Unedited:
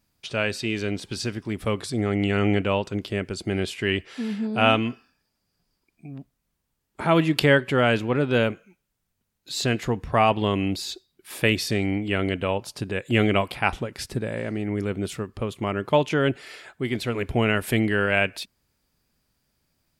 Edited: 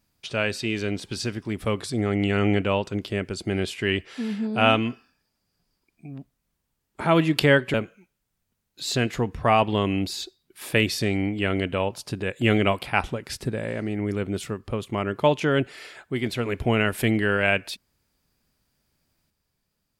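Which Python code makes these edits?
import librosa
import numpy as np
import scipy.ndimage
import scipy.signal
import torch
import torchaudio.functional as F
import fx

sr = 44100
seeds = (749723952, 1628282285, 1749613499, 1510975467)

y = fx.edit(x, sr, fx.cut(start_s=7.74, length_s=0.69), tone=tone)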